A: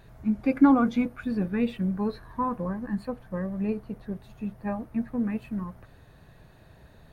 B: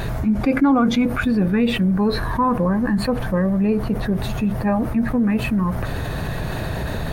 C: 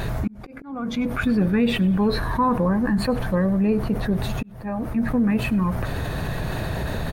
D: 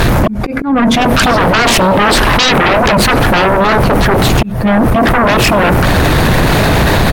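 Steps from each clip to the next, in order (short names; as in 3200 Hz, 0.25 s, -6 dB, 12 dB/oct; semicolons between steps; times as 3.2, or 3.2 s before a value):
fast leveller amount 70%
frequency-shifting echo 99 ms, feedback 62%, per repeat -75 Hz, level -22.5 dB; auto swell 0.669 s; gain -1.5 dB
sine folder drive 16 dB, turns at -9.5 dBFS; gain +3.5 dB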